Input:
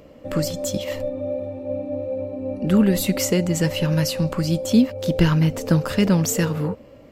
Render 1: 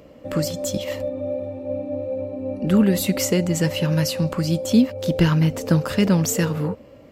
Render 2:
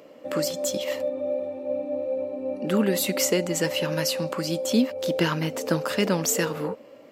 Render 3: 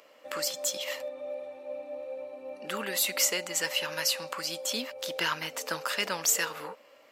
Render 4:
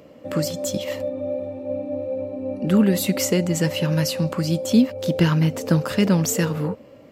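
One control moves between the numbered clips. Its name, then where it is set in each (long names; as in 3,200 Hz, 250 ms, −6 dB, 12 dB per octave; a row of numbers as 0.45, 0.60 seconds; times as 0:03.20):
high-pass filter, corner frequency: 42, 310, 1,000, 110 Hertz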